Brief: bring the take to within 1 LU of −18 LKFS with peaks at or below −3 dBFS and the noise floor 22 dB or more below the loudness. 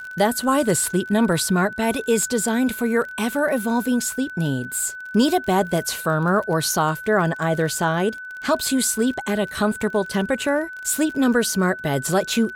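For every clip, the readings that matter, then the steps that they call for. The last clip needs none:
crackle rate 28 per second; interfering tone 1,500 Hz; level of the tone −32 dBFS; integrated loudness −21.5 LKFS; sample peak −7.5 dBFS; target loudness −18.0 LKFS
→ click removal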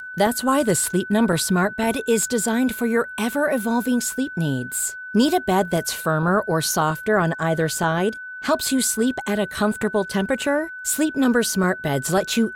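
crackle rate 0.72 per second; interfering tone 1,500 Hz; level of the tone −32 dBFS
→ notch filter 1,500 Hz, Q 30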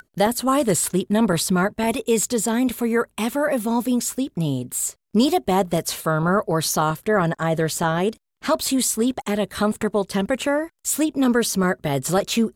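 interfering tone none found; integrated loudness −21.5 LKFS; sample peak −7.5 dBFS; target loudness −18.0 LKFS
→ level +3.5 dB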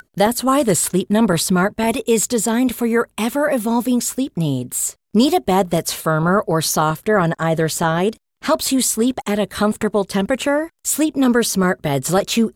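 integrated loudness −18.0 LKFS; sample peak −4.0 dBFS; background noise floor −66 dBFS

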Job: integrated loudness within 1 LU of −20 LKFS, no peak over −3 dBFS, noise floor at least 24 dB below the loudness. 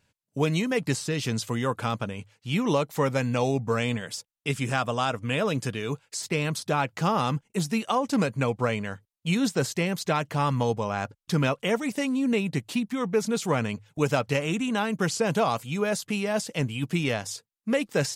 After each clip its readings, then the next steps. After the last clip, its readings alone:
integrated loudness −27.5 LKFS; sample peak −11.0 dBFS; target loudness −20.0 LKFS
→ level +7.5 dB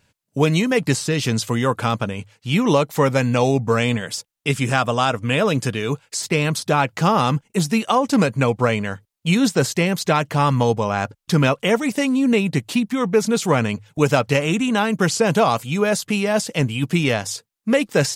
integrated loudness −20.0 LKFS; sample peak −3.5 dBFS; background noise floor −74 dBFS

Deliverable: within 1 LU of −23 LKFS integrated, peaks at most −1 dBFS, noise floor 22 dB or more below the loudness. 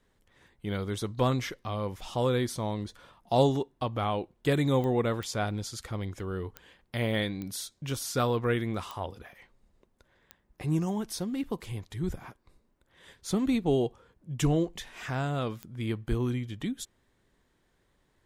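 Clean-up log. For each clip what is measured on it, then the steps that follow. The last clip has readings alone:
number of clicks 7; integrated loudness −31.0 LKFS; sample peak −11.5 dBFS; target loudness −23.0 LKFS
→ click removal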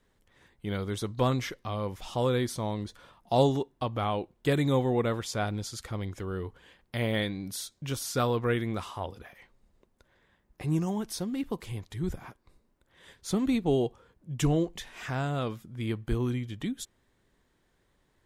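number of clicks 0; integrated loudness −31.0 LKFS; sample peak −11.5 dBFS; target loudness −23.0 LKFS
→ level +8 dB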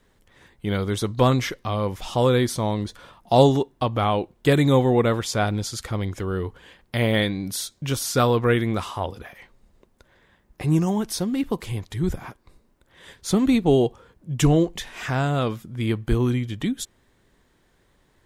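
integrated loudness −23.0 LKFS; sample peak −3.5 dBFS; background noise floor −63 dBFS

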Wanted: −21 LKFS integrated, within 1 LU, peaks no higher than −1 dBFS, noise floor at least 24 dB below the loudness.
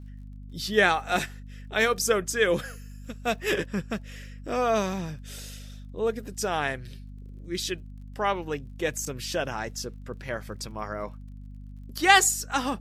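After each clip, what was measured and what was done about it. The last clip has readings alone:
crackle rate 32 per second; mains hum 50 Hz; hum harmonics up to 250 Hz; level of the hum −39 dBFS; integrated loudness −27.0 LKFS; sample peak −2.0 dBFS; target loudness −21.0 LKFS
→ click removal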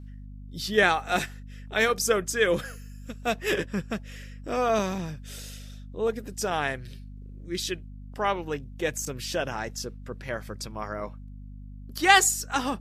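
crackle rate 0.078 per second; mains hum 50 Hz; hum harmonics up to 250 Hz; level of the hum −39 dBFS
→ mains-hum notches 50/100/150/200/250 Hz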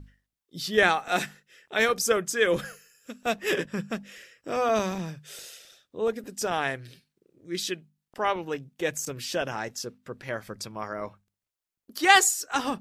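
mains hum none found; integrated loudness −27.0 LKFS; sample peak −2.0 dBFS; target loudness −21.0 LKFS
→ level +6 dB
brickwall limiter −1 dBFS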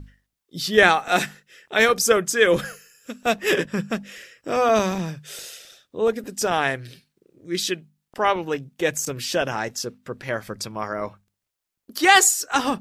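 integrated loudness −21.5 LKFS; sample peak −1.0 dBFS; background noise floor −82 dBFS

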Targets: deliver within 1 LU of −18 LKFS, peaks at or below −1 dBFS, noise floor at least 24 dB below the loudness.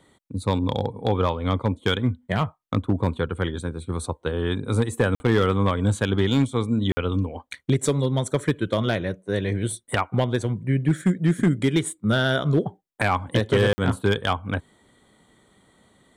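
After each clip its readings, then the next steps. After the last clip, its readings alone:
share of clipped samples 0.6%; peaks flattened at −12.0 dBFS; number of dropouts 3; longest dropout 50 ms; integrated loudness −24.0 LKFS; sample peak −12.0 dBFS; target loudness −18.0 LKFS
→ clipped peaks rebuilt −12 dBFS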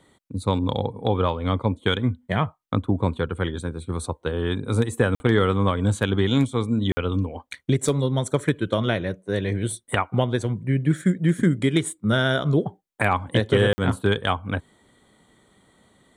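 share of clipped samples 0.0%; number of dropouts 3; longest dropout 50 ms
→ repair the gap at 0:05.15/0:06.92/0:13.73, 50 ms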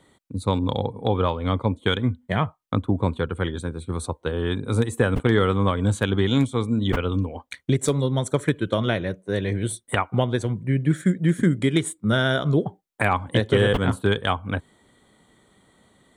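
number of dropouts 0; integrated loudness −23.5 LKFS; sample peak −4.5 dBFS; target loudness −18.0 LKFS
→ level +5.5 dB
brickwall limiter −1 dBFS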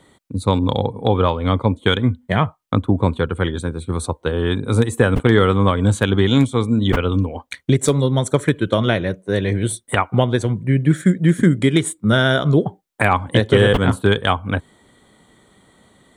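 integrated loudness −18.0 LKFS; sample peak −1.0 dBFS; background noise floor −60 dBFS

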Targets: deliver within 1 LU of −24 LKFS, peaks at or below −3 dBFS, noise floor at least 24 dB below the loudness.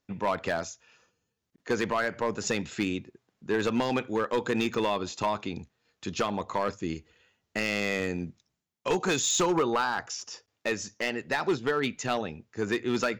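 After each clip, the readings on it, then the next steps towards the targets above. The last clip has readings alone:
share of clipped samples 1.3%; peaks flattened at −20.0 dBFS; number of dropouts 2; longest dropout 2.5 ms; integrated loudness −29.5 LKFS; sample peak −20.0 dBFS; target loudness −24.0 LKFS
→ clipped peaks rebuilt −20 dBFS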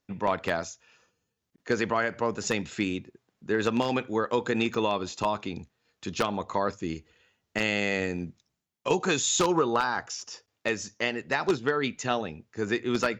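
share of clipped samples 0.0%; number of dropouts 2; longest dropout 2.5 ms
→ repair the gap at 0:04.74/0:10.21, 2.5 ms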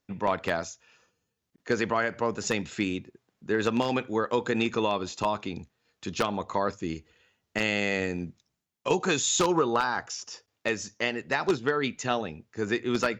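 number of dropouts 0; integrated loudness −28.5 LKFS; sample peak −11.0 dBFS; target loudness −24.0 LKFS
→ level +4.5 dB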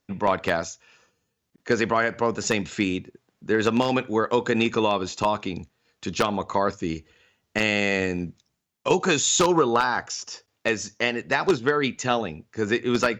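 integrated loudness −24.0 LKFS; sample peak −6.5 dBFS; background noise floor −77 dBFS

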